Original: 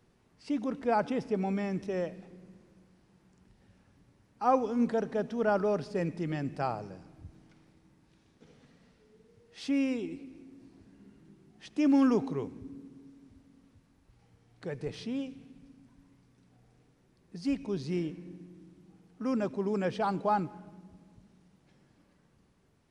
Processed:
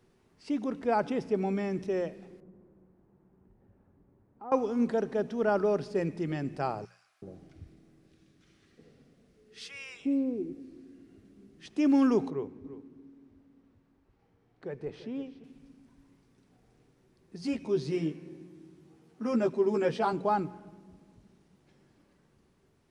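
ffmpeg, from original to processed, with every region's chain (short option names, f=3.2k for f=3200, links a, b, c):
-filter_complex "[0:a]asettb=1/sr,asplit=3[a][b][c];[a]atrim=end=2.404[d];[b]atrim=start=2.4:end=4.52,asetpts=PTS-STARTPTS,afade=t=in:d=0.004:c=qsin,afade=t=out:st=2.116:d=0.004:c=qsin,lowpass=1k,acompressor=threshold=-50dB:ratio=2:attack=3.2:release=140:knee=1:detection=peak[e];[c]atrim=start=4.516[f];[d][e]acrossfade=d=0.004:c1=hsin:c2=qsin[g];[g][f]acrossfade=d=0.004:c1=qsin:c2=hsin,asettb=1/sr,asplit=3[h][i][j];[h]atrim=end=6.854[k];[i]atrim=start=6.85:end=11.66,asetpts=PTS-STARTPTS,afade=t=in:d=0.004:c=qsin,afade=t=out:st=4.806:d=0.004:c=qsin,bandreject=f=900:w=5.9,acrossover=split=980[l][m];[l]adelay=370[n];[n][m]amix=inputs=2:normalize=0,atrim=end_sample=212121[o];[j]atrim=start=11.656[p];[k][o]acrossfade=d=0.004:c1=hsin:c2=qsin[q];[q][p]acrossfade=d=0.004:c1=qsin:c2=hsin,asettb=1/sr,asplit=3[r][s][t];[r]atrim=end=12.304[u];[s]atrim=start=12.3:end=15.44,asetpts=PTS-STARTPTS,afade=t=in:d=0.004:c=qsin,afade=t=out:st=3.136:d=0.004:c=qsin,lowpass=f=1.4k:p=1,lowshelf=f=260:g=-5.5,aecho=1:1:341:0.188,atrim=end_sample=138474[v];[t]atrim=start=15.436[w];[u][v]acrossfade=d=0.004:c1=hsin:c2=qsin[x];[x][w]acrossfade=d=0.004:c1=qsin:c2=hsin,asettb=1/sr,asplit=3[y][z][aa];[y]atrim=end=17.424[ab];[z]atrim=start=17.42:end=20.13,asetpts=PTS-STARTPTS,afade=t=in:d=0.004:c=qsin,afade=t=out:st=2.706:d=0.004:c=qsin,highpass=90,asplit=2[ac][ad];[ad]adelay=13,volume=-2.5dB[ae];[ac][ae]amix=inputs=2:normalize=0,atrim=end_sample=119511[af];[aa]atrim=start=20.126[ag];[ab][af]acrossfade=d=0.004:c1=hsin:c2=qsin[ah];[ah][ag]acrossfade=d=0.004:c1=qsin:c2=hsin,equalizer=f=380:t=o:w=0.28:g=5.5,bandreject=f=60:t=h:w=6,bandreject=f=120:t=h:w=6,bandreject=f=180:t=h:w=6"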